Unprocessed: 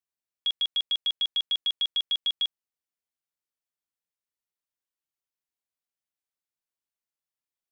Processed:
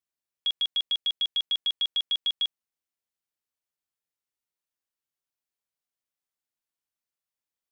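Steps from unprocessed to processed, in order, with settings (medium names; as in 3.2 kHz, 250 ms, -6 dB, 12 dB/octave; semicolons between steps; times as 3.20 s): 0.95–1.40 s: peaking EQ 920 Hz -4 dB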